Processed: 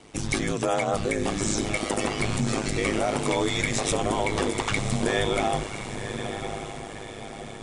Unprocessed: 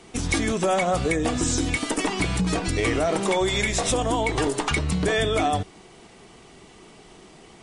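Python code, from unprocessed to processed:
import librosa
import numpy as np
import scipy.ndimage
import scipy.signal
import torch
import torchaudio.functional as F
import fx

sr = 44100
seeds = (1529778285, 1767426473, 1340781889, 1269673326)

y = fx.echo_diffused(x, sr, ms=1072, feedback_pct=51, wet_db=-8)
y = y * np.sin(2.0 * np.pi * 52.0 * np.arange(len(y)) / sr)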